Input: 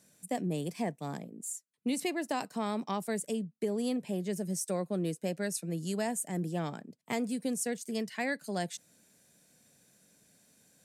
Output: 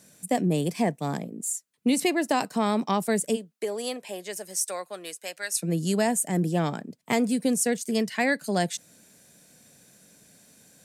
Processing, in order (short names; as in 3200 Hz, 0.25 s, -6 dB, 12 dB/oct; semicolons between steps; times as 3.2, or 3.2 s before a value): 3.35–5.6 HPF 480 Hz -> 1300 Hz 12 dB/oct; gain +9 dB